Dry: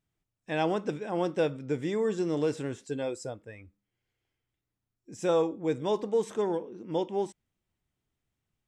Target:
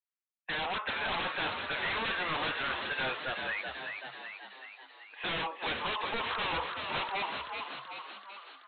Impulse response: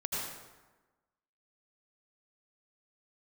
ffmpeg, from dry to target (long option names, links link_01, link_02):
-filter_complex "[0:a]highpass=frequency=930:width=0.5412,highpass=frequency=930:width=1.3066,agate=range=-33dB:threshold=-58dB:ratio=3:detection=peak,lowpass=frequency=2900:width=0.5412,lowpass=frequency=2900:width=1.3066,alimiter=level_in=7dB:limit=-24dB:level=0:latency=1:release=286,volume=-7dB,aresample=8000,aeval=exprs='0.0299*sin(PI/2*6.31*val(0)/0.0299)':channel_layout=same,aresample=44100,asplit=9[link_01][link_02][link_03][link_04][link_05][link_06][link_07][link_08][link_09];[link_02]adelay=381,afreqshift=66,volume=-5dB[link_10];[link_03]adelay=762,afreqshift=132,volume=-9.4dB[link_11];[link_04]adelay=1143,afreqshift=198,volume=-13.9dB[link_12];[link_05]adelay=1524,afreqshift=264,volume=-18.3dB[link_13];[link_06]adelay=1905,afreqshift=330,volume=-22.7dB[link_14];[link_07]adelay=2286,afreqshift=396,volume=-27.2dB[link_15];[link_08]adelay=2667,afreqshift=462,volume=-31.6dB[link_16];[link_09]adelay=3048,afreqshift=528,volume=-36.1dB[link_17];[link_01][link_10][link_11][link_12][link_13][link_14][link_15][link_16][link_17]amix=inputs=9:normalize=0"